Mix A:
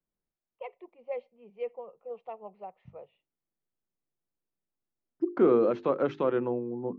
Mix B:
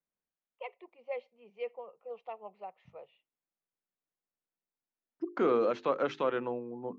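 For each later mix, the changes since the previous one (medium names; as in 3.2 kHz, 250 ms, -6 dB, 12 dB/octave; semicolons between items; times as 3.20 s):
second voice: add peaking EQ 360 Hz -4.5 dB 0.25 oct; master: add tilt EQ +3 dB/octave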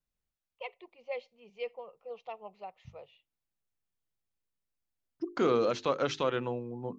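master: remove three-band isolator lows -20 dB, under 170 Hz, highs -16 dB, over 2.6 kHz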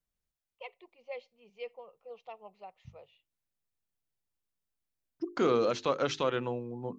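first voice -4.0 dB; master: add treble shelf 6.4 kHz +4 dB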